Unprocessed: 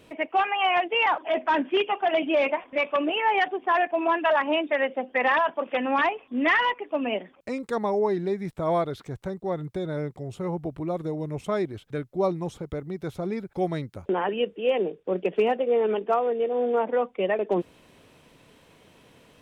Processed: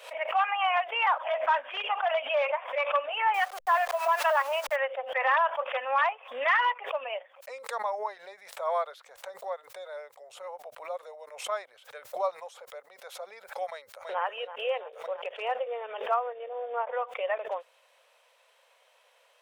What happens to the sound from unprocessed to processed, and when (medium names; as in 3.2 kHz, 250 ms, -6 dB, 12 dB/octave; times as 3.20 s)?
3.34–4.76 s: send-on-delta sampling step -36.5 dBFS
13.68–14.22 s: echo throw 330 ms, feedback 55%, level -10 dB
16.16–16.92 s: low-pass 2.8 kHz 6 dB/octave
whole clip: elliptic high-pass 530 Hz, stop band 40 dB; dynamic bell 1.2 kHz, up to +6 dB, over -37 dBFS, Q 1.5; swell ahead of each attack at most 110 dB/s; trim -5 dB